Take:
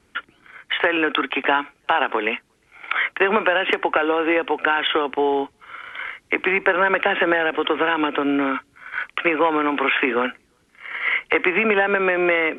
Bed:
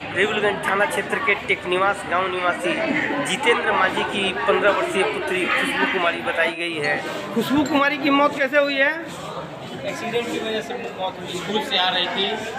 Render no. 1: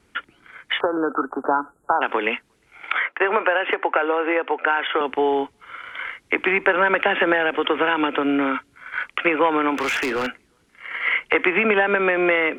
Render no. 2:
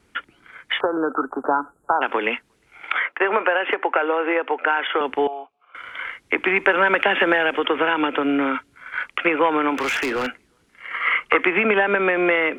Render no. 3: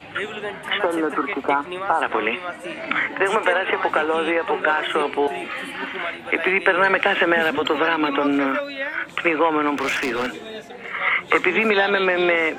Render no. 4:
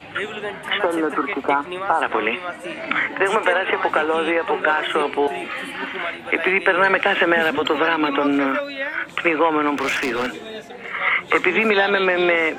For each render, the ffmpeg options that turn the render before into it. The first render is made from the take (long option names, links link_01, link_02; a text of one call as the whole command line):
ffmpeg -i in.wav -filter_complex "[0:a]asplit=3[link_01][link_02][link_03];[link_01]afade=type=out:start_time=0.79:duration=0.02[link_04];[link_02]asuperstop=centerf=3300:order=20:qfactor=0.59,afade=type=in:start_time=0.79:duration=0.02,afade=type=out:start_time=2.01:duration=0.02[link_05];[link_03]afade=type=in:start_time=2.01:duration=0.02[link_06];[link_04][link_05][link_06]amix=inputs=3:normalize=0,asettb=1/sr,asplit=3[link_07][link_08][link_09];[link_07]atrim=end=2.994[link_10];[link_08]atrim=start=2.99:end=5.01,asetpts=PTS-STARTPTS,afade=type=in:duration=0.004:curve=qsin,afade=type=out:start_time=2.016:duration=0.004:curve=qsin,acrossover=split=290 2700:gain=0.0631 1 0.158[link_11][link_12][link_13];[link_11][link_12][link_13]amix=inputs=3:normalize=0[link_14];[link_09]atrim=start=5.006[link_15];[link_10][link_14]acrossfade=duration=0.004:curve1=hsin:curve2=qsin[link_16];[link_16][link_15]acrossfade=duration=0.004:curve1=qsin:curve2=hsin,asettb=1/sr,asplit=3[link_17][link_18][link_19];[link_17]atrim=end=9.754[link_20];[link_18]atrim=start=9.75:end=10.27,asetpts=PTS-STARTPTS,afade=type=in:duration=0.004:curve=qsin,afade=type=out:start_time=0.516:duration=0.004:curve=qsin,asoftclip=type=hard:threshold=-20dB[link_21];[link_19]atrim=start=10.266[link_22];[link_20][link_21]acrossfade=duration=0.004:curve1=hsin:curve2=qsin[link_23];[link_23][link_22]acrossfade=duration=0.004:curve1=qsin:curve2=hsin" out.wav
ffmpeg -i in.wav -filter_complex "[0:a]asettb=1/sr,asplit=3[link_01][link_02][link_03];[link_01]atrim=end=5.274[link_04];[link_02]atrim=start=5.27:end=5.75,asetpts=PTS-STARTPTS,afade=type=in:duration=0.004:curve=qsin,afade=type=out:start_time=0.476:duration=0.004:curve=qsin,asplit=3[link_05][link_06][link_07];[link_05]bandpass=frequency=730:width_type=q:width=8,volume=0dB[link_08];[link_06]bandpass=frequency=1090:width_type=q:width=8,volume=-6dB[link_09];[link_07]bandpass=frequency=2440:width_type=q:width=8,volume=-9dB[link_10];[link_08][link_09][link_10]amix=inputs=3:normalize=0[link_11];[link_03]atrim=start=5.746[link_12];[link_04][link_11]acrossfade=duration=0.004:curve1=hsin:curve2=qsin[link_13];[link_13][link_12]acrossfade=duration=0.004:curve1=qsin:curve2=hsin,asettb=1/sr,asplit=3[link_14][link_15][link_16];[link_14]atrim=end=6.564[link_17];[link_15]atrim=start=6.56:end=7.59,asetpts=PTS-STARTPTS,afade=type=in:duration=0.004:curve=qsin,afade=type=out:start_time=1.026:duration=0.004:curve=qsin,equalizer=frequency=7400:width=0.43:gain=6[link_18];[link_16]atrim=start=7.586[link_19];[link_17][link_18]acrossfade=duration=0.004:curve1=hsin:curve2=qsin[link_20];[link_20][link_19]acrossfade=duration=0.004:curve1=qsin:curve2=hsin,asettb=1/sr,asplit=3[link_21][link_22][link_23];[link_21]atrim=end=10.934[link_24];[link_22]atrim=start=10.93:end=11.4,asetpts=PTS-STARTPTS,afade=type=in:duration=0.004:curve=qsin,afade=type=out:start_time=0.466:duration=0.004:curve=qsin,equalizer=frequency=1200:width=5.4:gain=13.5[link_25];[link_23]atrim=start=11.396[link_26];[link_24][link_25]acrossfade=duration=0.004:curve1=hsin:curve2=qsin[link_27];[link_27][link_26]acrossfade=duration=0.004:curve1=qsin:curve2=hsin" out.wav
ffmpeg -i in.wav -i bed.wav -filter_complex "[1:a]volume=-9.5dB[link_01];[0:a][link_01]amix=inputs=2:normalize=0" out.wav
ffmpeg -i in.wav -af "volume=1dB,alimiter=limit=-3dB:level=0:latency=1" out.wav